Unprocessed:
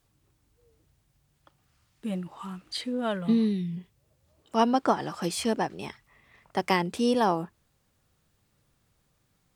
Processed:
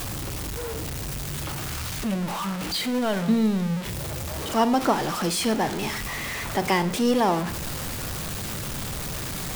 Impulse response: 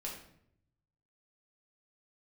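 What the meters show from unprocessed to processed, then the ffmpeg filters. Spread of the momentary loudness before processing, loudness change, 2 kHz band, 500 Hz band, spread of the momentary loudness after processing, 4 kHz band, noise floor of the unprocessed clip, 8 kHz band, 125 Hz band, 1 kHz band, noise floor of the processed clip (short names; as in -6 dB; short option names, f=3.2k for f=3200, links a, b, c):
15 LU, +2.0 dB, +7.0 dB, +3.5 dB, 9 LU, +7.5 dB, -71 dBFS, +12.0 dB, +8.5 dB, +3.0 dB, -32 dBFS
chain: -filter_complex "[0:a]aeval=exprs='val(0)+0.5*0.0531*sgn(val(0))':c=same,asplit=2[a][b];[1:a]atrim=start_sample=2205,adelay=41[c];[b][c]afir=irnorm=-1:irlink=0,volume=-12dB[d];[a][d]amix=inputs=2:normalize=0"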